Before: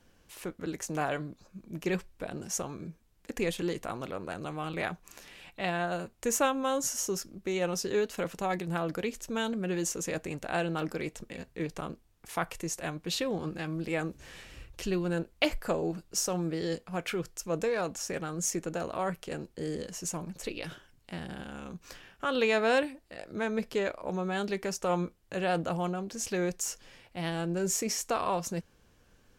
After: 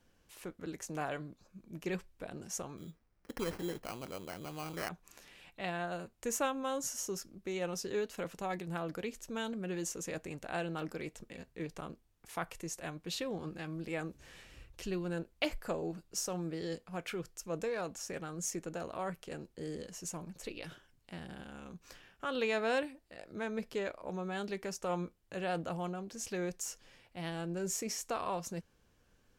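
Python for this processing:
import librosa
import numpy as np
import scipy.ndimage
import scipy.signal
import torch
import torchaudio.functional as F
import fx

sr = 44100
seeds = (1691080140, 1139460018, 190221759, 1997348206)

y = fx.sample_hold(x, sr, seeds[0], rate_hz=3600.0, jitter_pct=0, at=(2.77, 4.89))
y = y * 10.0 ** (-6.5 / 20.0)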